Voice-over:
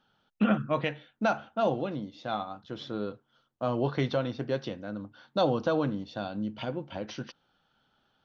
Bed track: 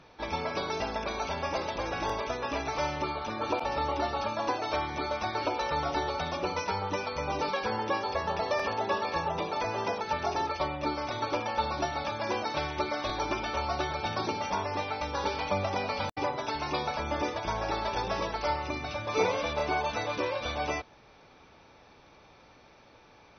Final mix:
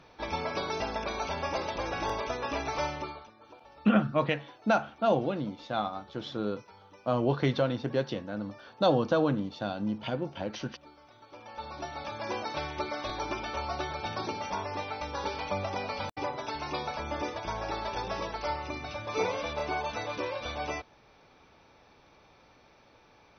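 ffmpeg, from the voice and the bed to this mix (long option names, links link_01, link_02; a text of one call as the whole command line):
ffmpeg -i stem1.wav -i stem2.wav -filter_complex "[0:a]adelay=3450,volume=1.5dB[link_01];[1:a]volume=19.5dB,afade=type=out:start_time=2.8:duration=0.51:silence=0.0749894,afade=type=in:start_time=11.28:duration=1.06:silence=0.1[link_02];[link_01][link_02]amix=inputs=2:normalize=0" out.wav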